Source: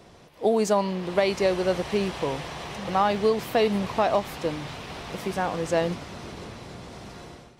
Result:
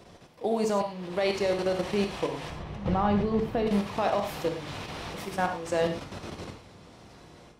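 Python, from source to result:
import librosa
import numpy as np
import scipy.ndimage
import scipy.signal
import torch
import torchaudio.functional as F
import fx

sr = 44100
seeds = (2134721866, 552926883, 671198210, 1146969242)

y = fx.riaa(x, sr, side='playback', at=(2.5, 3.67))
y = fx.level_steps(y, sr, step_db=13)
y = fx.rev_gated(y, sr, seeds[0], gate_ms=130, shape='flat', drr_db=4.0)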